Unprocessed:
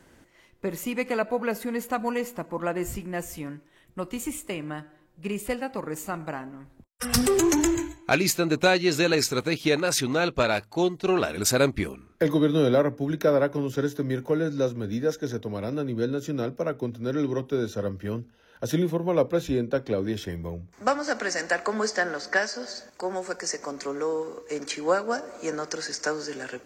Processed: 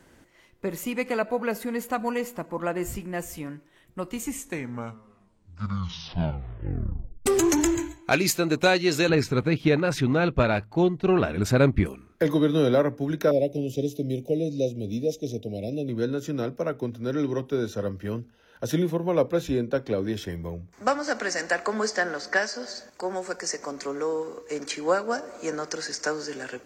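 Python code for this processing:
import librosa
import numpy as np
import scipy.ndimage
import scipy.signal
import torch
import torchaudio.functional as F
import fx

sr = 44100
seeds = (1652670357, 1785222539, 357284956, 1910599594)

y = fx.bass_treble(x, sr, bass_db=9, treble_db=-14, at=(9.09, 11.86))
y = fx.ellip_bandstop(y, sr, low_hz=670.0, high_hz=2500.0, order=3, stop_db=60, at=(13.31, 15.89))
y = fx.edit(y, sr, fx.tape_stop(start_s=4.1, length_s=3.16), tone=tone)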